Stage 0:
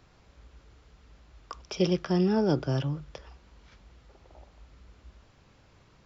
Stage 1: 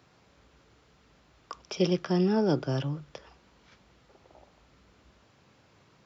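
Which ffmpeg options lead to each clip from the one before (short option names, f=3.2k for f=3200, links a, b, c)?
-af "highpass=120"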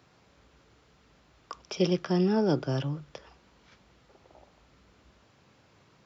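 -af anull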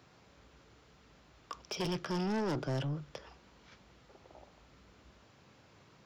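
-af "asoftclip=type=tanh:threshold=-31dB"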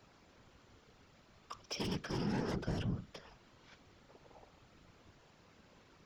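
-filter_complex "[0:a]acrossover=split=350|1200[a][b][c];[b]alimiter=level_in=14dB:limit=-24dB:level=0:latency=1:release=438,volume=-14dB[d];[a][d][c]amix=inputs=3:normalize=0,afftfilt=real='hypot(re,im)*cos(2*PI*random(0))':imag='hypot(re,im)*sin(2*PI*random(1))':win_size=512:overlap=0.75,volume=4dB"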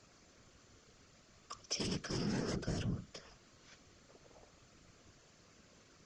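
-af "superequalizer=9b=0.501:14b=1.78:15b=3.16,volume=-1dB" -ar 22050 -c:a libvorbis -b:a 48k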